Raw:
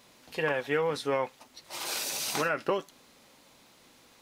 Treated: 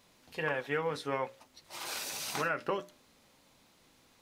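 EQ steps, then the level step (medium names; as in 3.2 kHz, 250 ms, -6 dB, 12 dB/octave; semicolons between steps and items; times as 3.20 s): hum notches 60/120/180/240/300/360/420/480/540/600 Hz; dynamic bell 1.4 kHz, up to +4 dB, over -44 dBFS, Q 0.71; bass shelf 160 Hz +8 dB; -6.5 dB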